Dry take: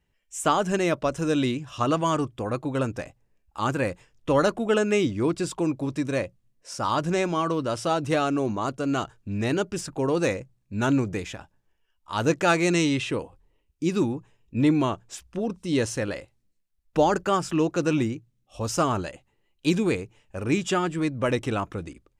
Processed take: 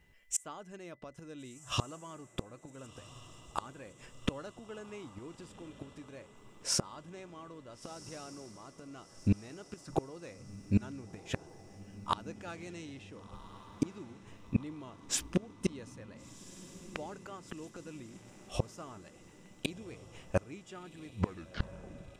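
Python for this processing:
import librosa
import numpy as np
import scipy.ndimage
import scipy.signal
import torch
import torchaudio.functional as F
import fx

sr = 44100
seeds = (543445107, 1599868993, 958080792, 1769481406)

p1 = fx.tape_stop_end(x, sr, length_s=1.16)
p2 = fx.gate_flip(p1, sr, shuts_db=-23.0, range_db=-31)
p3 = p2 + 10.0 ** (-77.0 / 20.0) * np.sin(2.0 * np.pi * 2000.0 * np.arange(len(p2)) / sr)
p4 = p3 + fx.echo_diffused(p3, sr, ms=1438, feedback_pct=58, wet_db=-15.5, dry=0)
y = p4 * 10.0 ** (7.0 / 20.0)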